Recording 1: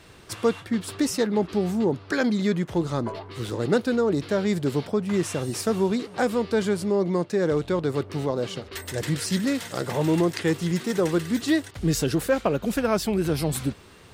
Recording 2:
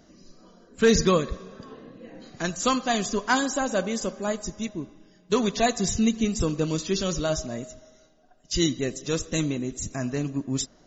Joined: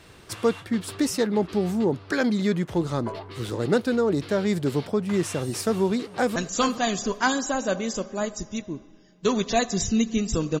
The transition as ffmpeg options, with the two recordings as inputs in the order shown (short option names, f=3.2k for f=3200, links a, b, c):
-filter_complex "[0:a]apad=whole_dur=10.6,atrim=end=10.6,atrim=end=6.362[a];[1:a]atrim=start=2.428:end=6.67[b];[a][b]acrossfade=d=0.004:c1=hsin:c2=hsin,asplit=2[c][d];[d]afade=t=in:st=5.96:d=0.01,afade=t=out:st=6.36:d=0.01,aecho=0:1:420|840|1260:0.334965|0.0669931|0.0133986[e];[c][e]amix=inputs=2:normalize=0"